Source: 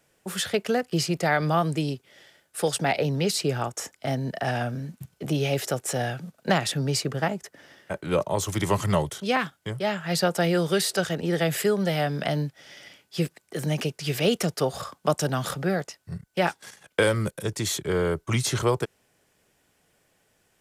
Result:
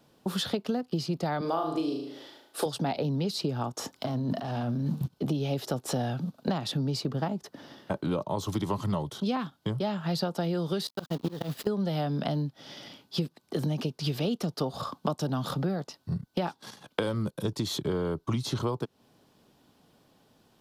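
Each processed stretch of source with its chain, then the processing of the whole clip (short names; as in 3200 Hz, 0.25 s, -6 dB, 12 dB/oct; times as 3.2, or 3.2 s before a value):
1.41–2.66 resonant low shelf 240 Hz -12.5 dB, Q 1.5 + flutter echo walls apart 6.4 m, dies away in 0.53 s
3.95–5.08 notches 50/100/150/200/250/300 Hz + sample leveller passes 2 + negative-ratio compressor -33 dBFS
10.87–11.67 gate -29 dBFS, range -24 dB + auto swell 0.263 s + companded quantiser 4-bit
whole clip: graphic EQ 125/250/1000/2000/4000/8000 Hz +5/+11/+8/-9/+9/-8 dB; compressor 6:1, threshold -27 dBFS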